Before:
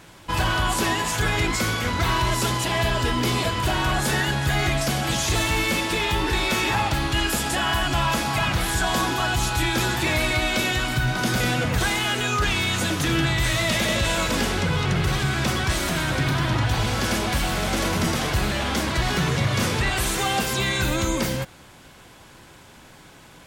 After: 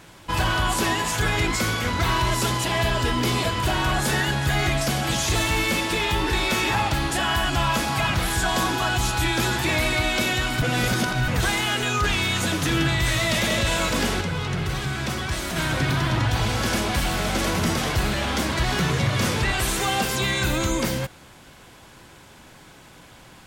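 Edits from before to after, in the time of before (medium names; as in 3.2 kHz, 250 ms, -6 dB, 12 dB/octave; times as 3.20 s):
7.11–7.49 s: delete
11.00–11.66 s: reverse
14.59–15.94 s: gain -4 dB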